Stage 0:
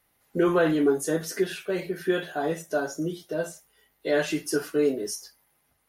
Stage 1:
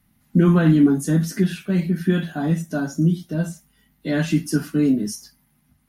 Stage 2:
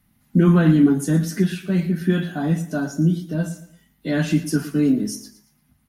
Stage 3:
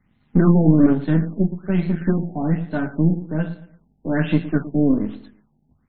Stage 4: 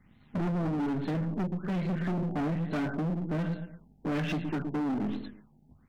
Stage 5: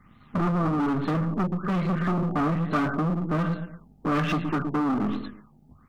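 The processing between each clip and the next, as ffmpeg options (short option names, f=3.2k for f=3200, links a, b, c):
-af "lowshelf=f=310:t=q:w=3:g=12,volume=1dB"
-af "aecho=1:1:115|230|345:0.178|0.064|0.023"
-af "aeval=exprs='if(lt(val(0),0),0.447*val(0),val(0))':c=same,afftfilt=real='re*lt(b*sr/1024,870*pow(4400/870,0.5+0.5*sin(2*PI*1.2*pts/sr)))':imag='im*lt(b*sr/1024,870*pow(4400/870,0.5+0.5*sin(2*PI*1.2*pts/sr)))':win_size=1024:overlap=0.75,volume=3dB"
-af "acompressor=threshold=-21dB:ratio=10,asoftclip=type=hard:threshold=-30.5dB,volume=2.5dB"
-af "equalizer=f=1.2k:t=o:w=0.29:g=15,volume=5dB"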